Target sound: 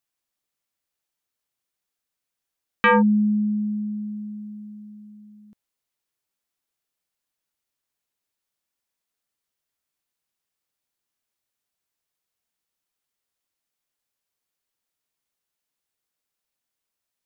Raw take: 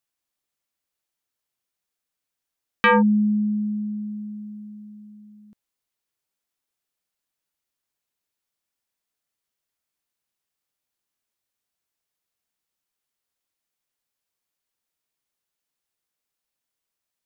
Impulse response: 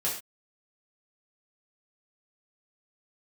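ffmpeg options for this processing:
-filter_complex "[0:a]acrossover=split=3800[a][b];[b]acompressor=threshold=-50dB:ratio=4:attack=1:release=60[c];[a][c]amix=inputs=2:normalize=0"

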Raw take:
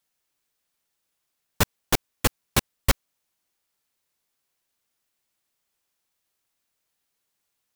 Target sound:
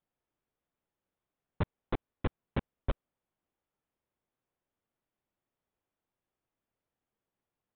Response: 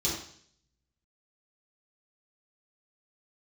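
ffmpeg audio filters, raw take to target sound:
-af "highshelf=f=2.1k:g=-11,aresample=8000,asoftclip=type=tanh:threshold=-24.5dB,aresample=44100,tiltshelf=f=1.1k:g=4.5,volume=-3.5dB"

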